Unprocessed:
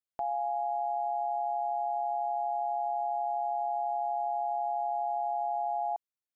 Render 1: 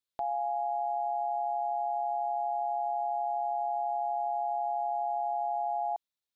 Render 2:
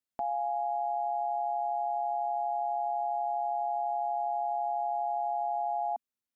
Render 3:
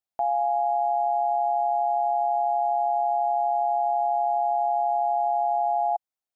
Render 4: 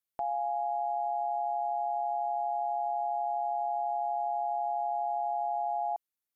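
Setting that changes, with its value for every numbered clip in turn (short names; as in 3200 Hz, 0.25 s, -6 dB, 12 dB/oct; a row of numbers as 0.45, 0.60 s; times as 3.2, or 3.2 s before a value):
bell, frequency: 3800, 240, 750, 13000 Hz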